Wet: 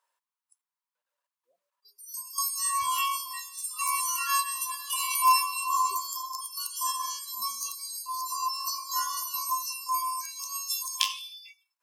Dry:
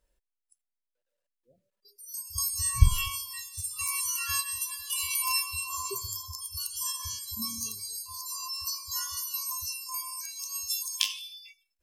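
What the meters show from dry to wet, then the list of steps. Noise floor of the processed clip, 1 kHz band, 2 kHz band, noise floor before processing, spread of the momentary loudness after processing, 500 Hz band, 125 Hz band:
under -85 dBFS, +13.5 dB, +1.5 dB, under -85 dBFS, 9 LU, under -10 dB, under -40 dB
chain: resonant high-pass 1 kHz, resonance Q 5.2

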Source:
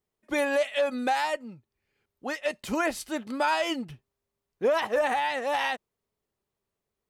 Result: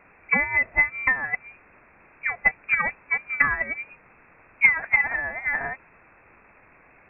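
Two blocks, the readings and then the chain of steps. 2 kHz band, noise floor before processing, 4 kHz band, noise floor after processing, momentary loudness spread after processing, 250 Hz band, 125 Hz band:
+11.5 dB, under -85 dBFS, under -25 dB, -55 dBFS, 11 LU, -9.0 dB, +6.5 dB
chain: local Wiener filter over 9 samples; level-controlled noise filter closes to 420 Hz, open at -22 dBFS; Chebyshev shaper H 2 -20 dB, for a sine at -16.5 dBFS; transient shaper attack +11 dB, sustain -6 dB; in parallel at -5 dB: word length cut 6-bit, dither triangular; on the sum: frequency inversion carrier 2.6 kHz; trim -4.5 dB

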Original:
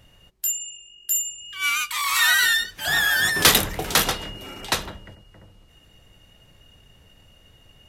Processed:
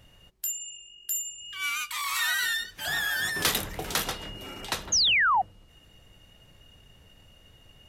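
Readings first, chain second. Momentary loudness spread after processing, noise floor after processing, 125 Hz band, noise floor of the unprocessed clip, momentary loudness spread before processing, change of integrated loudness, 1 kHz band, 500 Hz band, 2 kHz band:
16 LU, -57 dBFS, -8.0 dB, -55 dBFS, 16 LU, -6.5 dB, -1.5 dB, -8.5 dB, -6.5 dB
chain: compression 1.5:1, threshold -35 dBFS, peak gain reduction 9 dB; painted sound fall, 4.92–5.42 s, 710–6800 Hz -20 dBFS; trim -2 dB

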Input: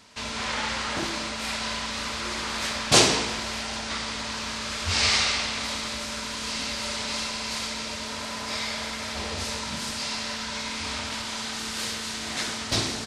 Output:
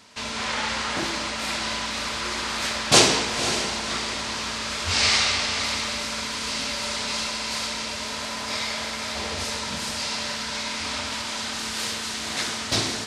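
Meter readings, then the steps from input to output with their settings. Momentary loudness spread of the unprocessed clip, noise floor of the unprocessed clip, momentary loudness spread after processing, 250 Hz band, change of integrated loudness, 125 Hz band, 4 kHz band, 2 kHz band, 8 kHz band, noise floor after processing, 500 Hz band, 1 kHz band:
10 LU, -34 dBFS, 9 LU, +1.0 dB, +2.5 dB, +0.5 dB, +2.5 dB, +2.5 dB, +2.5 dB, -31 dBFS, +2.5 dB, +2.5 dB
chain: bass shelf 71 Hz -7.5 dB; on a send: echo that smears into a reverb 527 ms, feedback 40%, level -9.5 dB; on the sum: trim +2 dB

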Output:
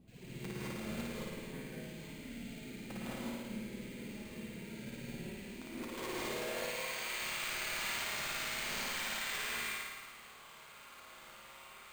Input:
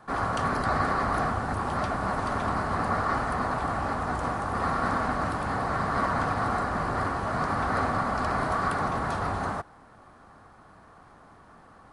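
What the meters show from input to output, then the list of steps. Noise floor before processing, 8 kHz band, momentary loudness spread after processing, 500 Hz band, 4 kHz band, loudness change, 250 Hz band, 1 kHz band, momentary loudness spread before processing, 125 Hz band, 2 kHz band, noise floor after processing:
-53 dBFS, +3.5 dB, 16 LU, -13.5 dB, +2.5 dB, -12.0 dB, -11.0 dB, -21.5 dB, 3 LU, -17.0 dB, -8.5 dB, -55 dBFS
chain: CVSD coder 64 kbps; spectral gate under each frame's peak -25 dB weak; bass shelf 440 Hz +10.5 dB; in parallel at +2 dB: compression 6:1, threshold -58 dBFS, peak gain reduction 16 dB; on the sum: added noise brown -60 dBFS; band-pass sweep 210 Hz -> 1.2 kHz, 5.46–7.03 s; integer overflow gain 54 dB; on a send: flutter echo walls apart 9.5 m, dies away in 1.4 s; on the sum: gated-style reverb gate 240 ms rising, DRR -6.5 dB; careless resampling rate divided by 4×, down filtered, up hold; trim +13 dB

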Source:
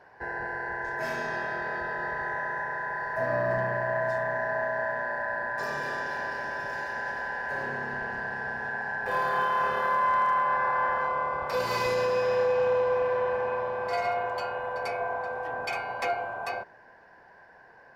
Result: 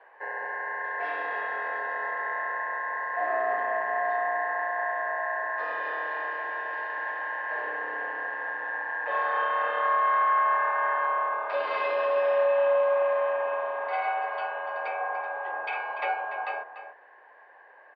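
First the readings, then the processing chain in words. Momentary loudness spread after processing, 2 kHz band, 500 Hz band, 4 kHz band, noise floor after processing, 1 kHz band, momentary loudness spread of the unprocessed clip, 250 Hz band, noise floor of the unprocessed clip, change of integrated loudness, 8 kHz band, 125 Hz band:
9 LU, +1.0 dB, 0.0 dB, -4.5 dB, -53 dBFS, +1.5 dB, 8 LU, under -10 dB, -54 dBFS, +1.0 dB, no reading, under -35 dB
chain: mistuned SSB +61 Hz 310–3400 Hz; echo from a far wall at 50 m, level -10 dB

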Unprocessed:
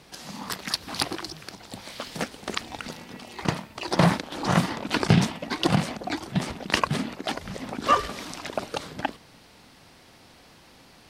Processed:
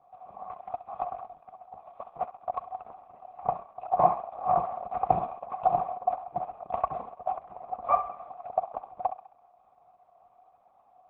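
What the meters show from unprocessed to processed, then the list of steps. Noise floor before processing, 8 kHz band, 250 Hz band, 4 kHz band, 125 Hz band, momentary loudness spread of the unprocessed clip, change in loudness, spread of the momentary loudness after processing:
-53 dBFS, under -40 dB, -20.5 dB, under -35 dB, -19.0 dB, 16 LU, -4.0 dB, 18 LU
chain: comb filter that takes the minimum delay 1.5 ms; high-pass 44 Hz 24 dB/octave; in parallel at -6.5 dB: crossover distortion -44 dBFS; on the sum: cascade formant filter a; on a send: thinning echo 67 ms, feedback 56%, high-pass 630 Hz, level -10.5 dB; on the sum: trim +8 dB; Opus 8 kbps 48 kHz

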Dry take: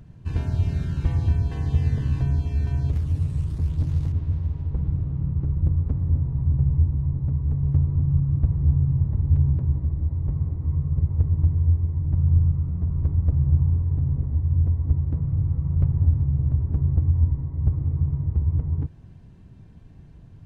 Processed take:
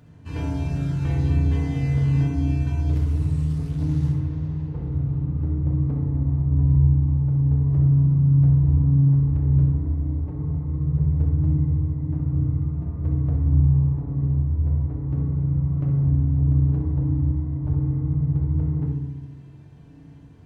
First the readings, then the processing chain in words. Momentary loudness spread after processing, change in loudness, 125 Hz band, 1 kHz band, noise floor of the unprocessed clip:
9 LU, +1.5 dB, +1.5 dB, no reading, -46 dBFS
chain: high-pass 230 Hz 6 dB/octave; hum notches 50/100/150/200/250/300 Hz; on a send: flutter echo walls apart 11.2 m, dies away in 0.47 s; on the sum: FDN reverb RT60 1 s, low-frequency decay 1.5×, high-frequency decay 0.5×, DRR -1.5 dB

